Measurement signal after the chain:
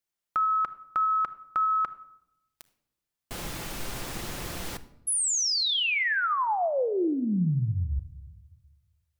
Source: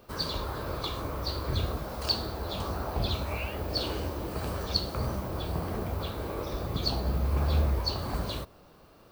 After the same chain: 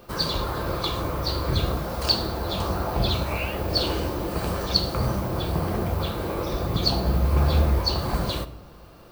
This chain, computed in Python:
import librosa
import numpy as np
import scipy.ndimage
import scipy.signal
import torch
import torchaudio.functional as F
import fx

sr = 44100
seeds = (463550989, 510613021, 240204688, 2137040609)

y = fx.room_shoebox(x, sr, seeds[0], volume_m3=2700.0, walls='furnished', distance_m=0.83)
y = F.gain(torch.from_numpy(y), 6.5).numpy()